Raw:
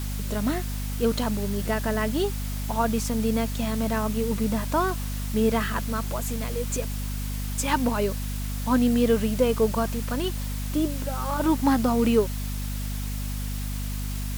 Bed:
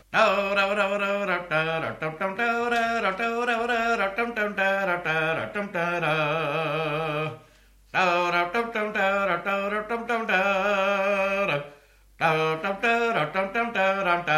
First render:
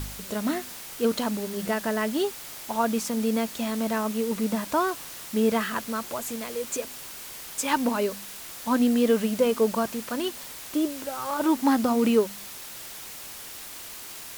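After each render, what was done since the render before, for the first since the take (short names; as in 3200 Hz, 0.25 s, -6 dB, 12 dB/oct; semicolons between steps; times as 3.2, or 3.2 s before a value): de-hum 50 Hz, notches 5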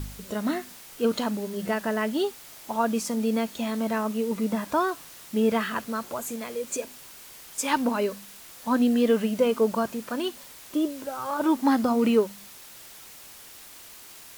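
noise print and reduce 6 dB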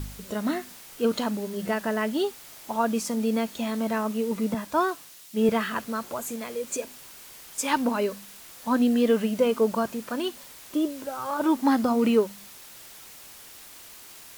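4.54–5.49 three-band expander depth 70%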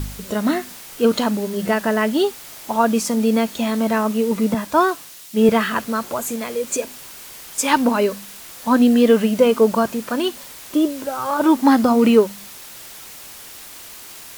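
gain +8 dB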